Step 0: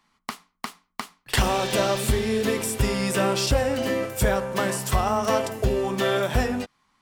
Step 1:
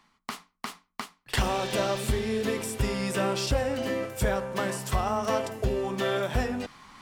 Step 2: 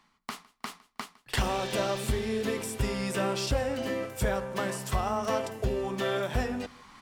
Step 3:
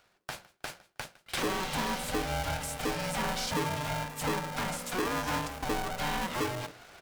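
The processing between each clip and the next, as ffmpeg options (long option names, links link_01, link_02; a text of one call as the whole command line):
ffmpeg -i in.wav -af "highshelf=frequency=8100:gain=-5,areverse,acompressor=mode=upward:threshold=-27dB:ratio=2.5,areverse,volume=-4.5dB" out.wav
ffmpeg -i in.wav -af "aecho=1:1:158|316:0.0668|0.012,volume=-2dB" out.wav
ffmpeg -i in.wav -filter_complex "[0:a]acrossover=split=200[link_01][link_02];[link_01]adelay=50[link_03];[link_03][link_02]amix=inputs=2:normalize=0,asoftclip=type=tanh:threshold=-25dB,aeval=exprs='val(0)*sgn(sin(2*PI*370*n/s))':channel_layout=same" out.wav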